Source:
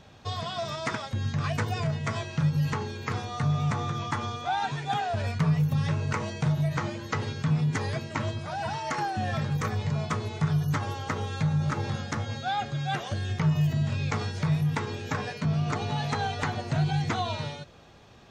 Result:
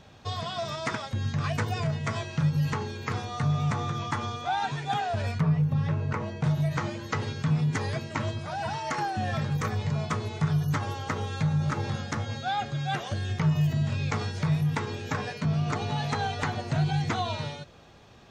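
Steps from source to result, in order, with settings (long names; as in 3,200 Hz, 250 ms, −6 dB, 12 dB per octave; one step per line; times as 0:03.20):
0:05.40–0:06.44: low-pass filter 1,500 Hz 6 dB per octave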